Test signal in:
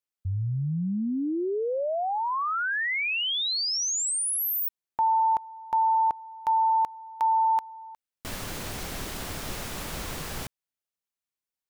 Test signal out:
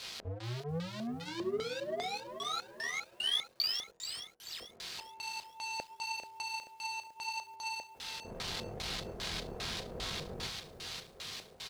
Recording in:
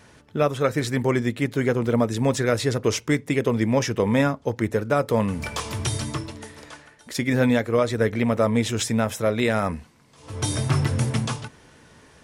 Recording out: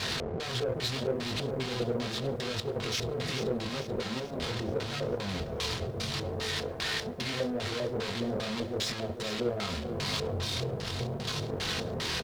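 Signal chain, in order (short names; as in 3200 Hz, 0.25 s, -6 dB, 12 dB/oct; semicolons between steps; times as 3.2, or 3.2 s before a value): infinite clipping; feedback echo 0.567 s, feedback 49%, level -17.5 dB; chorus 0.79 Hz, delay 20 ms, depth 5 ms; high shelf 5200 Hz +7 dB; notch comb 290 Hz; LFO low-pass square 2.5 Hz 540–4100 Hz; power-law curve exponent 1.4; lo-fi delay 0.435 s, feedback 55%, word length 9-bit, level -10.5 dB; gain -4 dB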